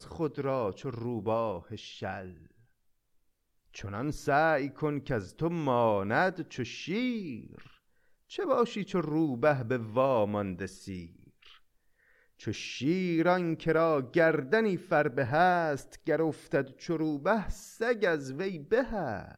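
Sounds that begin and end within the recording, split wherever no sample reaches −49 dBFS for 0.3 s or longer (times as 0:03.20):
0:03.74–0:07.73
0:08.30–0:11.57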